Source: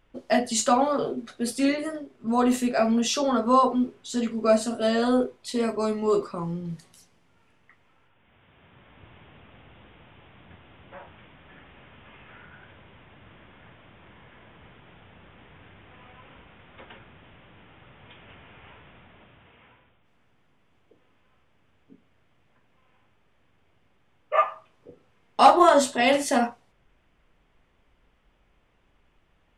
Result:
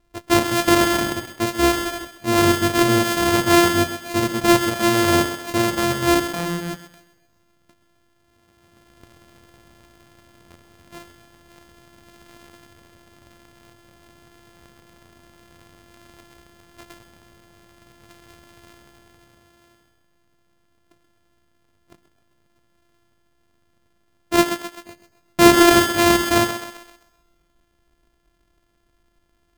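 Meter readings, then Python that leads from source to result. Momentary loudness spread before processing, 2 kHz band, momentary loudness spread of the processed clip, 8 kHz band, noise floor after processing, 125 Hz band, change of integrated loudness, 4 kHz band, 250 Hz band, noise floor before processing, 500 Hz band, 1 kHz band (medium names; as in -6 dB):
14 LU, +10.5 dB, 14 LU, +7.5 dB, -65 dBFS, +13.5 dB, +5.5 dB, +9.5 dB, +6.5 dB, -65 dBFS, +3.5 dB, +1.5 dB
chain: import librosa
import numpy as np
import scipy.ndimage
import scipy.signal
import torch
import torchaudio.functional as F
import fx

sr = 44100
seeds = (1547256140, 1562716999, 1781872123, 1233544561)

y = np.r_[np.sort(x[:len(x) // 128 * 128].reshape(-1, 128), axis=1).ravel(), x[len(x) // 128 * 128:]]
y = fx.echo_thinned(y, sr, ms=130, feedback_pct=48, hz=170.0, wet_db=-10.0)
y = fx.leveller(y, sr, passes=1)
y = F.gain(torch.from_numpy(y), 2.0).numpy()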